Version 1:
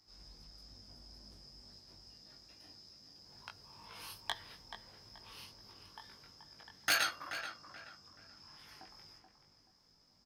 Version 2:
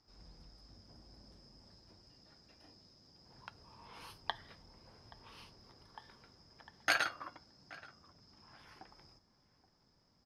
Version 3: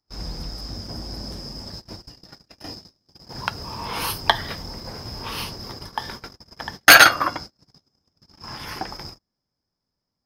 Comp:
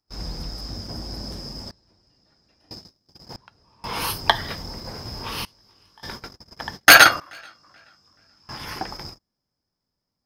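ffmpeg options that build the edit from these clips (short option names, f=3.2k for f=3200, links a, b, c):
-filter_complex "[1:a]asplit=2[a][b];[0:a]asplit=2[c][d];[2:a]asplit=5[e][f][g][h][i];[e]atrim=end=1.712[j];[a]atrim=start=1.708:end=2.712[k];[f]atrim=start=2.708:end=3.362[l];[b]atrim=start=3.358:end=3.842[m];[g]atrim=start=3.838:end=5.452[n];[c]atrim=start=5.448:end=6.032[o];[h]atrim=start=6.028:end=7.202[p];[d]atrim=start=7.198:end=8.492[q];[i]atrim=start=8.488[r];[j][k]acrossfade=d=0.004:c1=hsin:c2=hsin[s];[s][l]acrossfade=d=0.004:c1=hsin:c2=hsin[t];[t][m]acrossfade=d=0.004:c1=hsin:c2=hsin[u];[u][n]acrossfade=d=0.004:c1=hsin:c2=hsin[v];[v][o]acrossfade=d=0.004:c1=hsin:c2=hsin[w];[w][p]acrossfade=d=0.004:c1=hsin:c2=hsin[x];[x][q]acrossfade=d=0.004:c1=hsin:c2=hsin[y];[y][r]acrossfade=d=0.004:c1=hsin:c2=hsin"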